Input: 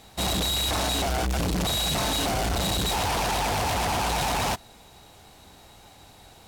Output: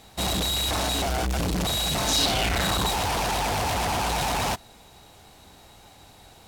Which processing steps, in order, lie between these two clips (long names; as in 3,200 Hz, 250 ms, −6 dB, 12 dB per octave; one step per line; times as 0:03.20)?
0:02.07–0:02.89: parametric band 6,800 Hz → 850 Hz +11.5 dB 0.81 octaves